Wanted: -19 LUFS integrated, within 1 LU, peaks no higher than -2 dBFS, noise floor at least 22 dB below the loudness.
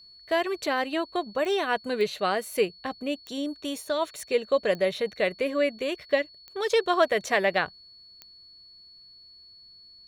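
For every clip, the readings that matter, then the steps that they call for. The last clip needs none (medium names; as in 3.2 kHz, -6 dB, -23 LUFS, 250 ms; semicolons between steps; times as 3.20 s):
clicks found 7; steady tone 4.4 kHz; tone level -49 dBFS; loudness -27.5 LUFS; peak level -8.5 dBFS; loudness target -19.0 LUFS
-> de-click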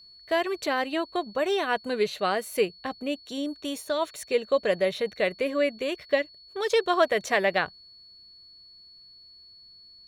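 clicks found 0; steady tone 4.4 kHz; tone level -49 dBFS
-> band-stop 4.4 kHz, Q 30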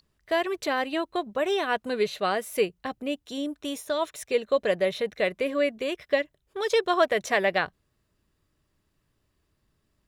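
steady tone not found; loudness -27.5 LUFS; peak level -9.0 dBFS; loudness target -19.0 LUFS
-> trim +8.5 dB; peak limiter -2 dBFS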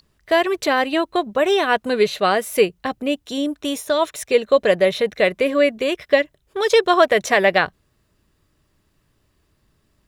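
loudness -19.0 LUFS; peak level -2.0 dBFS; noise floor -66 dBFS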